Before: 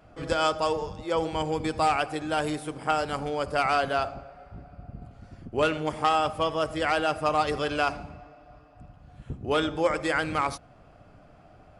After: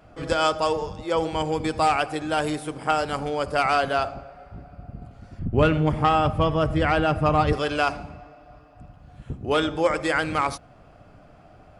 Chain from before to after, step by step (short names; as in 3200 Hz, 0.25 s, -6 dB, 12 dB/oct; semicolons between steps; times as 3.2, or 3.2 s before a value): 5.39–7.53 tone controls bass +14 dB, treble -10 dB; gain +3 dB